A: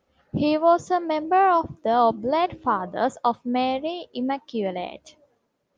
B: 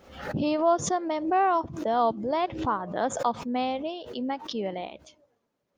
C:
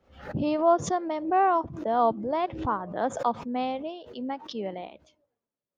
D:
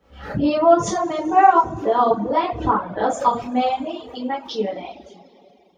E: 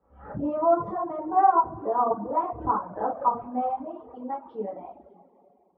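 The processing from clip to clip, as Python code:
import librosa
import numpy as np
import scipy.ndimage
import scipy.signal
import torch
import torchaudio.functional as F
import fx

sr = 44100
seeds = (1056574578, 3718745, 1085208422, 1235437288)

y1 = fx.pre_swell(x, sr, db_per_s=85.0)
y1 = y1 * librosa.db_to_amplitude(-5.0)
y2 = fx.high_shelf(y1, sr, hz=3900.0, db=-11.0)
y2 = fx.band_widen(y2, sr, depth_pct=40)
y3 = fx.rev_double_slope(y2, sr, seeds[0], early_s=0.42, late_s=2.7, knee_db=-15, drr_db=-6.0)
y3 = fx.dereverb_blind(y3, sr, rt60_s=0.94)
y3 = y3 * librosa.db_to_amplitude(3.0)
y4 = fx.ladder_lowpass(y3, sr, hz=1300.0, resonance_pct=40)
y4 = y4 * librosa.db_to_amplitude(-2.0)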